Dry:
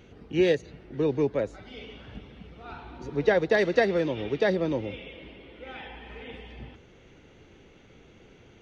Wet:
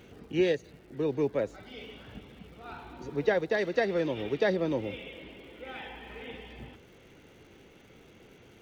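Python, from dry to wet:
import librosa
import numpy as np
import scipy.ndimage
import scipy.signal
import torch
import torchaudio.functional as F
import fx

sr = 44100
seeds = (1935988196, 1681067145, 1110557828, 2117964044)

y = fx.low_shelf(x, sr, hz=77.0, db=-8.0)
y = fx.rider(y, sr, range_db=10, speed_s=0.5)
y = fx.dmg_crackle(y, sr, seeds[0], per_s=360.0, level_db=-52.0)
y = y * 10.0 ** (-2.5 / 20.0)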